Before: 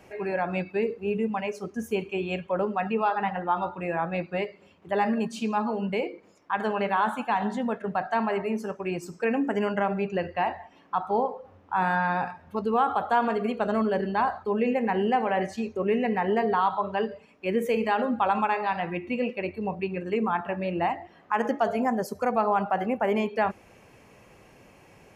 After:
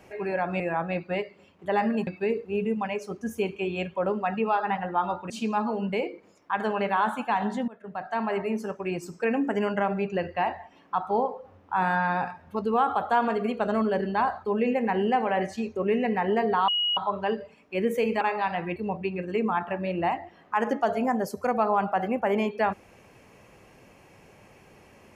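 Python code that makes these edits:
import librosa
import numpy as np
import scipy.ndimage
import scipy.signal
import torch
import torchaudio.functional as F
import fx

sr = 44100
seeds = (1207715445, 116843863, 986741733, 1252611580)

y = fx.edit(x, sr, fx.move(start_s=3.83, length_s=1.47, to_s=0.6),
    fx.fade_in_from(start_s=7.68, length_s=0.71, floor_db=-22.0),
    fx.insert_tone(at_s=16.68, length_s=0.29, hz=2900.0, db=-22.5),
    fx.cut(start_s=17.92, length_s=0.54),
    fx.cut(start_s=19.01, length_s=0.53), tone=tone)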